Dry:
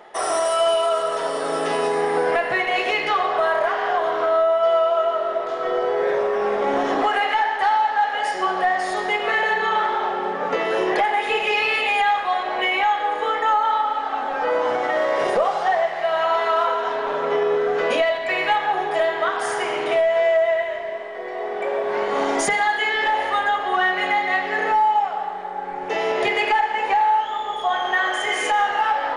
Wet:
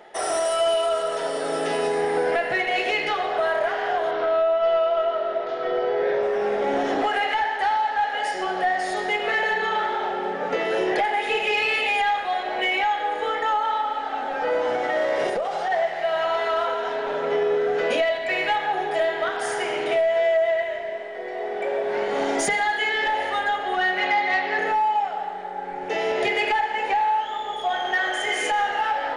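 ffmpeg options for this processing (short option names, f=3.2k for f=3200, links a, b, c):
-filter_complex "[0:a]asettb=1/sr,asplit=3[a][b][c];[a]atrim=end=4.114[d];[b]atrim=start=4.11:end=6.23,asetpts=PTS-STARTPTS,afade=t=in:d=0.004:c=qsin,afade=t=out:st=2.116:d=0.004:c=qsin,lowpass=f=5.3k:w=0.5412,lowpass=f=5.3k:w=1.3066[e];[c]atrim=start=6.226[f];[d][e]acrossfade=d=0.004:c1=hsin:c2=qsin[g];[g][f]acrossfade=d=0.004:c1=qsin:c2=hsin,asplit=3[h][i][j];[h]afade=t=out:st=15.28:d=0.02[k];[i]acompressor=threshold=-19dB:ratio=6:attack=3.2:release=140:knee=1:detection=peak,afade=t=in:st=15.28:d=0.02,afade=t=out:st=15.7:d=0.02[l];[j]afade=t=in:st=15.7:d=0.02[m];[k][l][m]amix=inputs=3:normalize=0,asettb=1/sr,asplit=3[n][o][p];[n]atrim=end=23.984[q];[o]atrim=start=23.98:end=24.59,asetpts=PTS-STARTPTS,afade=t=in:d=0.004:c=qsin,afade=t=out:st=0.606:d=0.004:c=qsin,highpass=190,equalizer=f=1k:t=q:w=4:g=9,equalizer=f=2.3k:t=q:w=4:g=3,equalizer=f=4.4k:t=q:w=4:g=4,lowpass=f=6.1k:w=0.5412,lowpass=f=6.1k:w=1.3066[r];[p]atrim=start=24.586[s];[q][r]acrossfade=d=0.004:c1=hsin:c2=qsin[t];[t][s]acrossfade=d=0.004:c1=qsin:c2=hsin,acontrast=83,equalizer=f=1.1k:t=o:w=0.33:g=-10.5,volume=-8dB"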